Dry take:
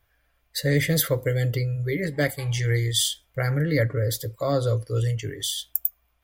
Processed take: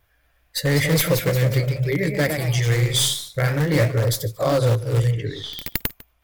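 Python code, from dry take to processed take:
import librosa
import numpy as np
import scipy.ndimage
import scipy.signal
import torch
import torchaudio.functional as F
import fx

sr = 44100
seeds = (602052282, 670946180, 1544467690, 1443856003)

p1 = fx.tracing_dist(x, sr, depth_ms=0.041)
p2 = (np.mod(10.0 ** (17.0 / 20.0) * p1 + 1.0, 2.0) - 1.0) / 10.0 ** (17.0 / 20.0)
p3 = p1 + (p2 * librosa.db_to_amplitude(-11.0))
p4 = fx.vibrato(p3, sr, rate_hz=1.1, depth_cents=6.7)
p5 = fx.air_absorb(p4, sr, metres=300.0, at=(5.1, 5.61), fade=0.02)
p6 = p5 + fx.echo_single(p5, sr, ms=150, db=-20.0, dry=0)
p7 = fx.echo_pitch(p6, sr, ms=231, semitones=1, count=3, db_per_echo=-6.0)
y = p7 * librosa.db_to_amplitude(1.5)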